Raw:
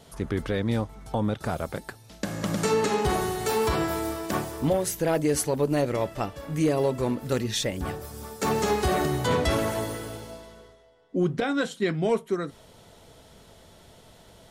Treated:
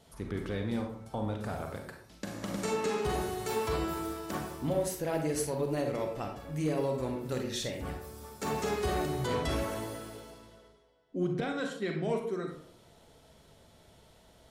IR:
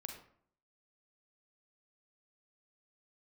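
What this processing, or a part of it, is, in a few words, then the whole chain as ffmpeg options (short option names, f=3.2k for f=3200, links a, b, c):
bathroom: -filter_complex "[1:a]atrim=start_sample=2205[a];[0:a][a]afir=irnorm=-1:irlink=0,volume=-4dB"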